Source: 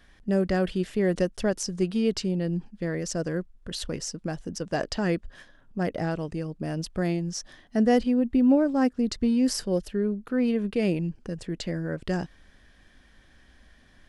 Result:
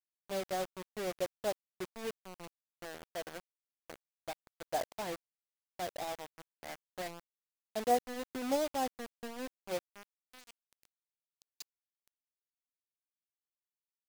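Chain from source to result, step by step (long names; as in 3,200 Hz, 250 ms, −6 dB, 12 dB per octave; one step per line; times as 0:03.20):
band-pass filter sweep 770 Hz → 6,100 Hz, 0:09.85–0:10.83
bit reduction 6 bits
expander for the loud parts 1.5 to 1, over −50 dBFS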